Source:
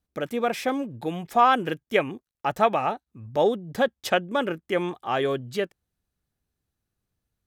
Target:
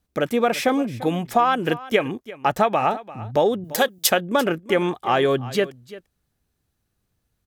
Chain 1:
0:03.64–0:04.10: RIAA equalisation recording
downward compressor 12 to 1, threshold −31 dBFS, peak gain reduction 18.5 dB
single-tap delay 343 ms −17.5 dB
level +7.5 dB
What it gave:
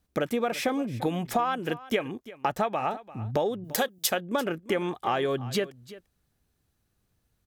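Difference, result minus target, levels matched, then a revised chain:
downward compressor: peak gain reduction +8.5 dB
0:03.64–0:04.10: RIAA equalisation recording
downward compressor 12 to 1, threshold −21.5 dBFS, peak gain reduction 9.5 dB
single-tap delay 343 ms −17.5 dB
level +7.5 dB

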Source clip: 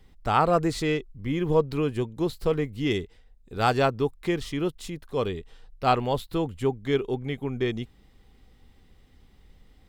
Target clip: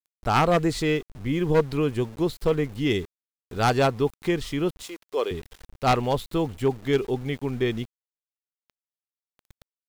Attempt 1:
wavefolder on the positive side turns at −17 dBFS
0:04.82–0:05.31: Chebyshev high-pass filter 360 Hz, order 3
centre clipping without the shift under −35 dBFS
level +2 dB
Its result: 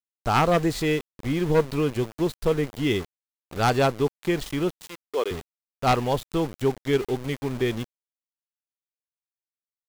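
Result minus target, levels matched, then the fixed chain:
centre clipping without the shift: distortion +9 dB
wavefolder on the positive side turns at −17 dBFS
0:04.82–0:05.31: Chebyshev high-pass filter 360 Hz, order 3
centre clipping without the shift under −44 dBFS
level +2 dB

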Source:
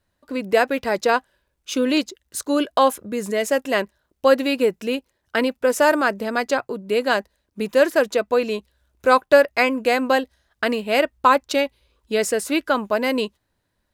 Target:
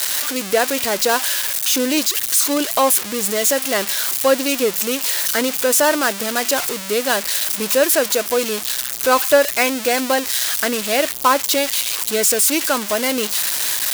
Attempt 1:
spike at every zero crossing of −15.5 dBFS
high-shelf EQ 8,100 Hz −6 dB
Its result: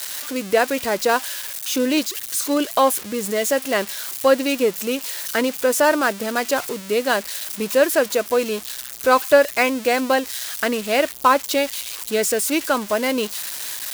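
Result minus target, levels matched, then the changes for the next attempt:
spike at every zero crossing: distortion −9 dB
change: spike at every zero crossing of −6.5 dBFS

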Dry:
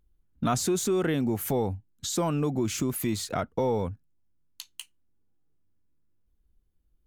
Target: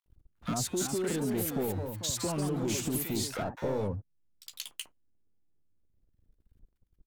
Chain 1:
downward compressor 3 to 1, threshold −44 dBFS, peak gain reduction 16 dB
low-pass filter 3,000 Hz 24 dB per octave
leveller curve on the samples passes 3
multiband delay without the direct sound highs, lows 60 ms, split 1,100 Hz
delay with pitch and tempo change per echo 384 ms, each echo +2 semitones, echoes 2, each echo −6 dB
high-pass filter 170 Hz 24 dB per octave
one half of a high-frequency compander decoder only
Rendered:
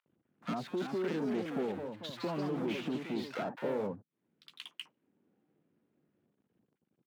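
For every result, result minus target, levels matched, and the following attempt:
125 Hz band −5.0 dB; 4,000 Hz band −3.0 dB
downward compressor 3 to 1, threshold −44 dBFS, peak gain reduction 16 dB
low-pass filter 3,000 Hz 24 dB per octave
leveller curve on the samples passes 3
multiband delay without the direct sound highs, lows 60 ms, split 1,100 Hz
delay with pitch and tempo change per echo 384 ms, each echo +2 semitones, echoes 2, each echo −6 dB
one half of a high-frequency compander decoder only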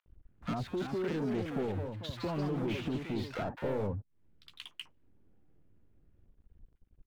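4,000 Hz band −3.5 dB
downward compressor 3 to 1, threshold −44 dBFS, peak gain reduction 16 dB
leveller curve on the samples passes 3
multiband delay without the direct sound highs, lows 60 ms, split 1,100 Hz
delay with pitch and tempo change per echo 384 ms, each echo +2 semitones, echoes 2, each echo −6 dB
one half of a high-frequency compander decoder only

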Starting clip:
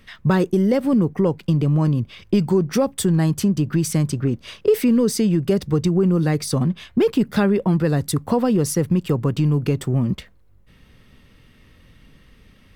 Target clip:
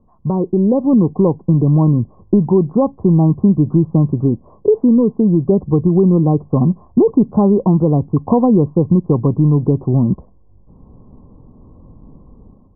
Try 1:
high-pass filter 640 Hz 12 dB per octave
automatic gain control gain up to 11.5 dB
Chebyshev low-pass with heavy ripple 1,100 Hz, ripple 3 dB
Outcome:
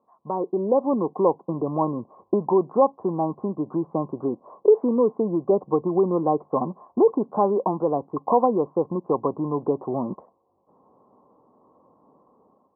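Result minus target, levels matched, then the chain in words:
500 Hz band +5.5 dB
automatic gain control gain up to 11.5 dB
Chebyshev low-pass with heavy ripple 1,100 Hz, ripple 3 dB

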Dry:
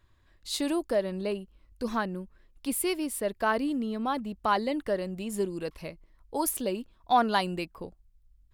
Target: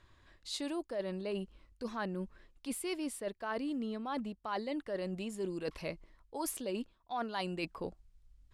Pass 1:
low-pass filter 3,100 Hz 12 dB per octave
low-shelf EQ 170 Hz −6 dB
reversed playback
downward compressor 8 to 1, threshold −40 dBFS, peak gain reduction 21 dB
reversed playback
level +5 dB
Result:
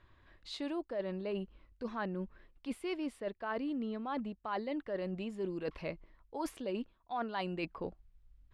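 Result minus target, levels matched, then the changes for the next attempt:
8,000 Hz band −13.5 dB
change: low-pass filter 8,300 Hz 12 dB per octave

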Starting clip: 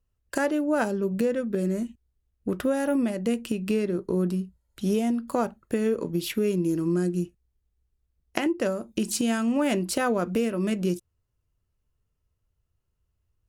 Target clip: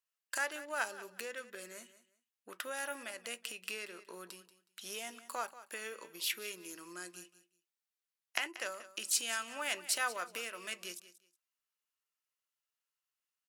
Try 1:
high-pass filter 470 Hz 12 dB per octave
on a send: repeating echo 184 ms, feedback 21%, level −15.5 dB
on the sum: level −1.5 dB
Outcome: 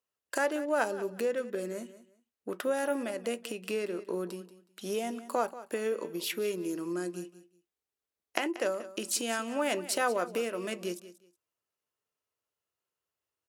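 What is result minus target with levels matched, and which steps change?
500 Hz band +9.5 dB
change: high-pass filter 1,400 Hz 12 dB per octave

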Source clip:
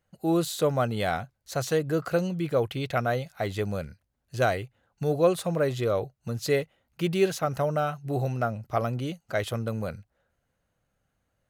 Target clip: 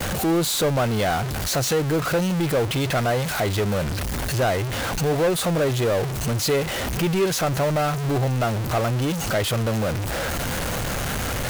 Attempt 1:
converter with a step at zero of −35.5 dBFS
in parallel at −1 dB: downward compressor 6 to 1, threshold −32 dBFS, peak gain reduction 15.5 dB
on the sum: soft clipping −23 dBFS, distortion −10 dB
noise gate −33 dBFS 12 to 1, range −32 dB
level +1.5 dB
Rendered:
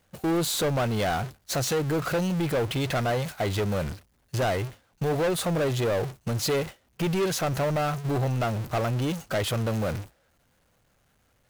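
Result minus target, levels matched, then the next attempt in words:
converter with a step at zero: distortion −8 dB; soft clipping: distortion +7 dB
converter with a step at zero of −26 dBFS
in parallel at −1 dB: downward compressor 6 to 1, threshold −32 dBFS, peak gain reduction 16 dB
on the sum: soft clipping −16.5 dBFS, distortion −17 dB
noise gate −33 dBFS 12 to 1, range −32 dB
level +1.5 dB

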